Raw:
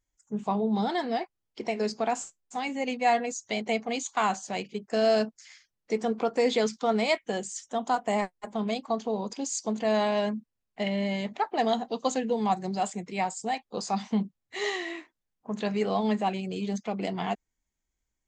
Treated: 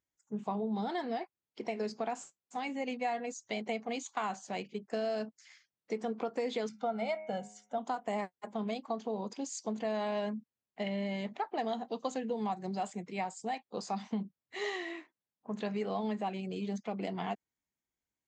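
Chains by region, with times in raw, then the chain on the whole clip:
6.69–7.78 high shelf 2700 Hz -11.5 dB + comb 1.4 ms, depth 77% + de-hum 104.4 Hz, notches 26
whole clip: HPF 110 Hz; high shelf 4900 Hz -7.5 dB; compressor, threshold -26 dBFS; gain -4.5 dB

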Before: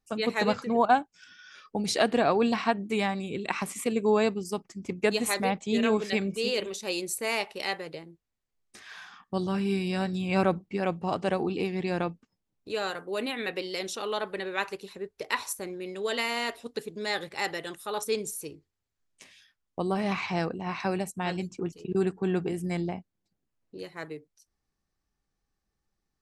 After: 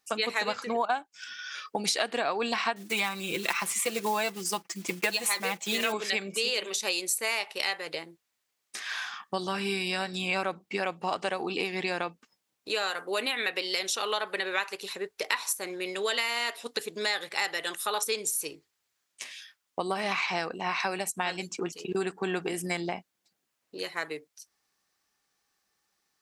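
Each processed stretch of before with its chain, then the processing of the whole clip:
2.76–5.94 block floating point 5-bit + comb 5.9 ms, depth 59%
whole clip: HPF 460 Hz 6 dB/oct; tilt shelf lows -4.5 dB, about 700 Hz; compressor 4:1, threshold -35 dBFS; gain +8 dB

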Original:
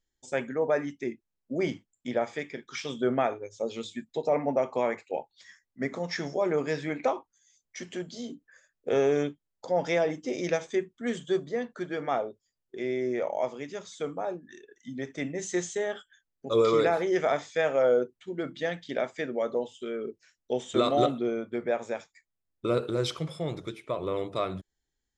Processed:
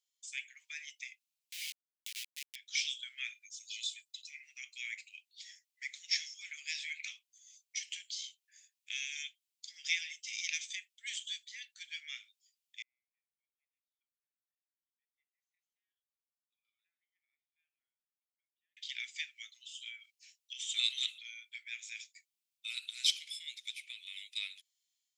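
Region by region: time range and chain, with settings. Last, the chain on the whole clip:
1.52–2.56 bell 1600 Hz -14 dB 2.2 oct + sample gate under -34.5 dBFS
3.33–4.43 bell 1200 Hz -10.5 dB 1.6 oct + comb 2 ms, depth 49%
12.82–18.77 Butterworth band-pass 540 Hz, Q 3.8 + cascading phaser rising 1.1 Hz
whole clip: steep high-pass 2300 Hz 48 dB/oct; AGC gain up to 4.5 dB; gain +1 dB

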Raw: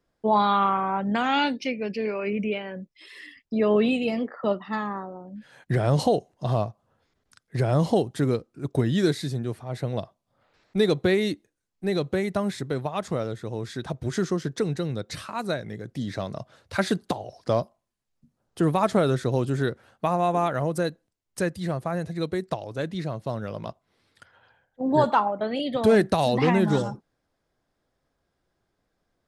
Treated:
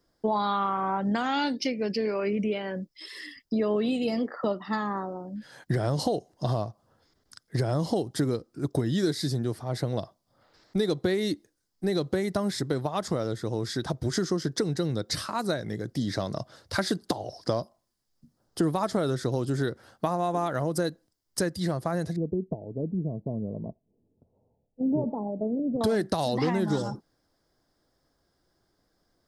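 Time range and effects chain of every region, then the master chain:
22.16–25.81 Gaussian blur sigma 17 samples + comb 4.6 ms, depth 34%
whole clip: high shelf 9000 Hz +6.5 dB; compressor 4:1, threshold -27 dBFS; thirty-one-band EQ 315 Hz +4 dB, 2500 Hz -8 dB, 5000 Hz +9 dB; gain +2.5 dB

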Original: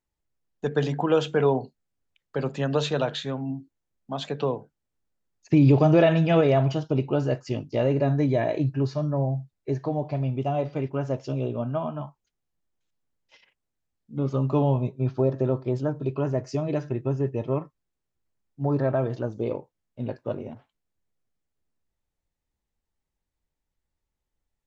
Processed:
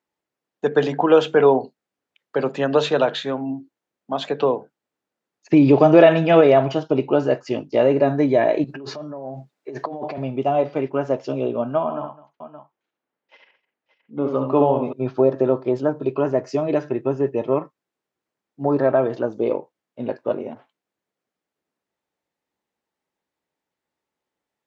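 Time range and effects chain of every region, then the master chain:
8.64–10.18 HPF 180 Hz + negative-ratio compressor -36 dBFS
11.83–14.93 tone controls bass -4 dB, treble -13 dB + tapped delay 69/207/571 ms -6/-19.5/-12.5 dB
whole clip: HPF 280 Hz 12 dB/oct; high shelf 4800 Hz -12 dB; gain +8.5 dB

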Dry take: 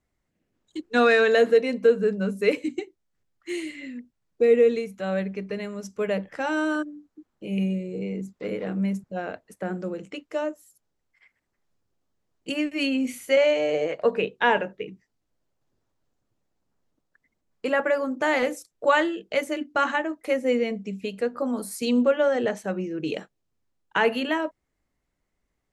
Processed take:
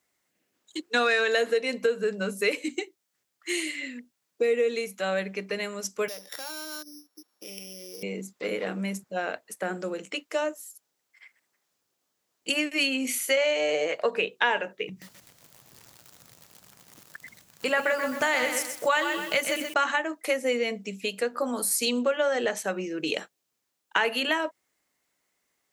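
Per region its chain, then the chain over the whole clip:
6.08–8.03 sample sorter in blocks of 8 samples + HPF 260 Hz + compressor 4:1, threshold -42 dBFS
14.89–19.74 resonant low shelf 210 Hz +11 dB, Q 1.5 + upward compressor, threshold -31 dBFS + lo-fi delay 0.128 s, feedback 35%, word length 8-bit, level -8 dB
whole clip: tilt +2.5 dB/oct; compressor 3:1, threshold -26 dBFS; HPF 240 Hz 6 dB/oct; gain +4 dB

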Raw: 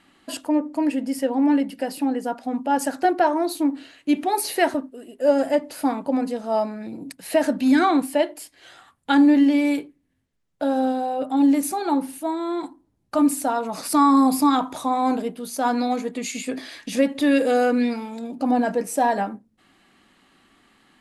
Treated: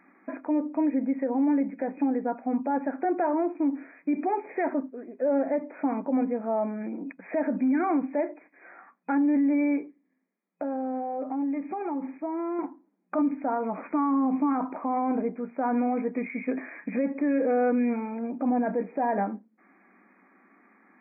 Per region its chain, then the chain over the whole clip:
9.77–12.59 notch 1500 Hz, Q 8.2 + compressor, threshold -27 dBFS
whole clip: FFT band-pass 180–2500 Hz; dynamic EQ 1500 Hz, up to -5 dB, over -36 dBFS, Q 0.77; limiter -18.5 dBFS

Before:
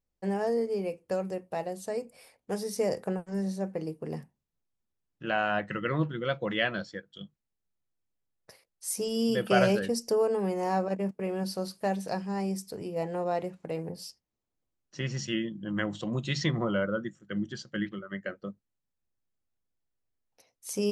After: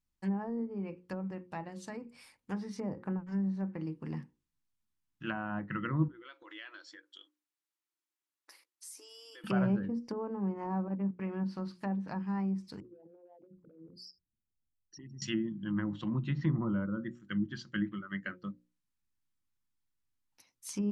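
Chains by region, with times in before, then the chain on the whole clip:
6.08–9.44 brick-wall FIR high-pass 280 Hz + compressor 3:1, threshold -48 dBFS
12.8–15.22 formant sharpening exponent 3 + compressor 3:1, threshold -49 dBFS
whole clip: notches 60/120/180/240/300/360/420/480/540 Hz; treble ducked by the level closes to 780 Hz, closed at -26.5 dBFS; band shelf 540 Hz -13.5 dB 1.1 oct

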